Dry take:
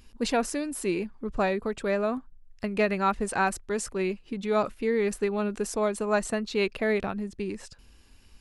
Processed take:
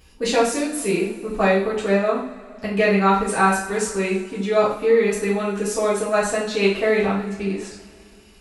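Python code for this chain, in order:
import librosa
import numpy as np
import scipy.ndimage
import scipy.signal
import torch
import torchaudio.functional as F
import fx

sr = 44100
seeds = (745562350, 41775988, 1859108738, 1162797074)

y = fx.highpass(x, sr, hz=72.0, slope=6)
y = fx.rev_double_slope(y, sr, seeds[0], early_s=0.49, late_s=2.7, knee_db=-20, drr_db=-7.5)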